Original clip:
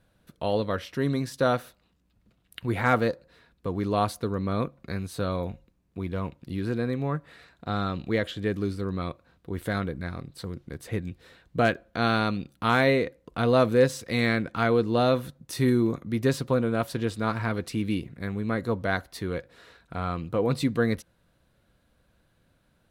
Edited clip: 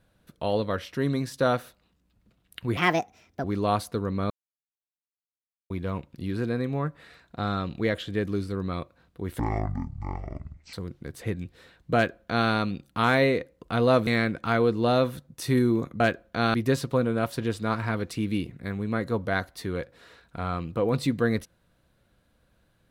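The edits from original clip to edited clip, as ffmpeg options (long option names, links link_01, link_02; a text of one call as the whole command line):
ffmpeg -i in.wav -filter_complex "[0:a]asplit=10[link_01][link_02][link_03][link_04][link_05][link_06][link_07][link_08][link_09][link_10];[link_01]atrim=end=2.774[link_11];[link_02]atrim=start=2.77:end=3.73,asetpts=PTS-STARTPTS,asetrate=63063,aresample=44100[link_12];[link_03]atrim=start=3.726:end=4.59,asetpts=PTS-STARTPTS,afade=type=out:start_time=0.86:duration=0.004:curve=hsin[link_13];[link_04]atrim=start=4.59:end=5.99,asetpts=PTS-STARTPTS,volume=0[link_14];[link_05]atrim=start=5.99:end=9.684,asetpts=PTS-STARTPTS,afade=type=in:duration=0.004:curve=hsin[link_15];[link_06]atrim=start=9.68:end=10.39,asetpts=PTS-STARTPTS,asetrate=23373,aresample=44100,atrim=end_sample=59077,asetpts=PTS-STARTPTS[link_16];[link_07]atrim=start=10.386:end=13.732[link_17];[link_08]atrim=start=14.178:end=16.112[link_18];[link_09]atrim=start=11.608:end=12.152[link_19];[link_10]atrim=start=16.108[link_20];[link_11][link_12]acrossfade=duration=0.004:curve1=hsin:curve2=hsin[link_21];[link_13][link_14][link_15]concat=n=3:v=0:a=1[link_22];[link_21][link_22]acrossfade=duration=0.004:curve1=hsin:curve2=hsin[link_23];[link_23][link_16]acrossfade=duration=0.004:curve1=hsin:curve2=hsin[link_24];[link_24][link_17]acrossfade=duration=0.004:curve1=hsin:curve2=hsin[link_25];[link_25][link_18]acrossfade=duration=0.004:curve1=hsin:curve2=hsin[link_26];[link_26][link_19]acrossfade=duration=0.004:curve1=hsin:curve2=hsin[link_27];[link_27][link_20]acrossfade=duration=0.004:curve1=hsin:curve2=hsin" out.wav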